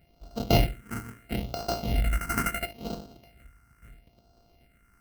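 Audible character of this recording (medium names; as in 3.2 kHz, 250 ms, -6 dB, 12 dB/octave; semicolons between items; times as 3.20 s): a buzz of ramps at a fixed pitch in blocks of 64 samples; tremolo saw up 1.5 Hz, depth 30%; aliases and images of a low sample rate 3.5 kHz, jitter 0%; phasing stages 4, 0.75 Hz, lowest notch 610–2000 Hz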